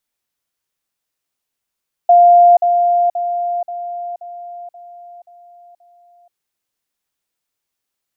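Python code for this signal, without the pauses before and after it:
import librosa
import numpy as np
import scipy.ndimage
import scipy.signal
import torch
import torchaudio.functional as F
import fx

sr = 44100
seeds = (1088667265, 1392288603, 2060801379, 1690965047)

y = fx.level_ladder(sr, hz=700.0, from_db=-4.5, step_db=-6.0, steps=8, dwell_s=0.48, gap_s=0.05)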